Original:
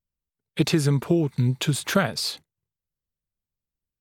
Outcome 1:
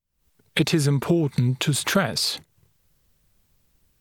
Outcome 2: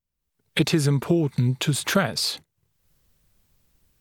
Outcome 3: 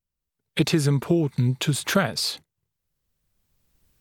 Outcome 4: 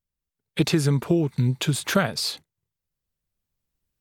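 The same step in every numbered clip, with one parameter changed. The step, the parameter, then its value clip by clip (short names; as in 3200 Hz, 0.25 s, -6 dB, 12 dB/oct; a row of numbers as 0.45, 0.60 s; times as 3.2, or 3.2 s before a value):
recorder AGC, rising by: 87, 35, 14, 5.1 dB/s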